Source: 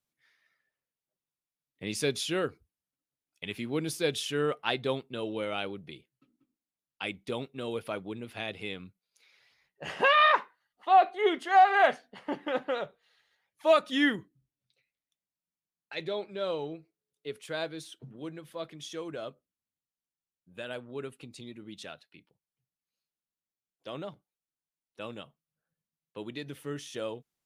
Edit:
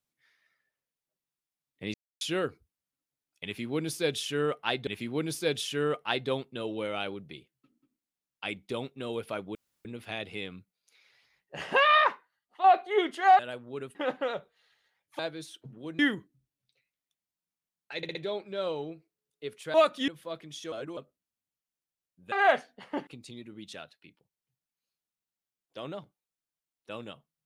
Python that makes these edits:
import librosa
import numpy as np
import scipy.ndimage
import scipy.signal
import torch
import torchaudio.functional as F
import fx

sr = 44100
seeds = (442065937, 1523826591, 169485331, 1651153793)

y = fx.edit(x, sr, fx.silence(start_s=1.94, length_s=0.27),
    fx.repeat(start_s=3.45, length_s=1.42, count=2),
    fx.insert_room_tone(at_s=8.13, length_s=0.3),
    fx.fade_out_to(start_s=10.23, length_s=0.69, floor_db=-7.0),
    fx.swap(start_s=11.67, length_s=0.75, other_s=20.61, other_length_s=0.56),
    fx.swap(start_s=13.66, length_s=0.34, other_s=17.57, other_length_s=0.8),
    fx.stutter(start_s=15.98, slice_s=0.06, count=4),
    fx.reverse_span(start_s=19.01, length_s=0.25), tone=tone)